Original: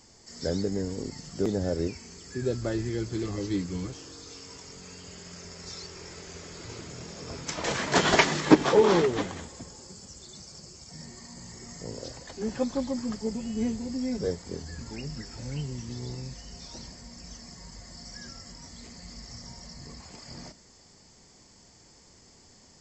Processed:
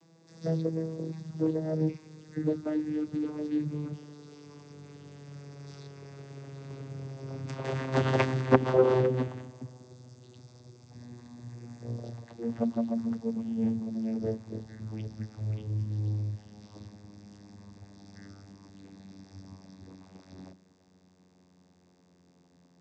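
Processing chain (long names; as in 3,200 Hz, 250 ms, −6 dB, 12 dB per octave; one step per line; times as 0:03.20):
vocoder with a gliding carrier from E3, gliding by −11 semitones
high-frequency loss of the air 51 metres
saturating transformer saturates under 840 Hz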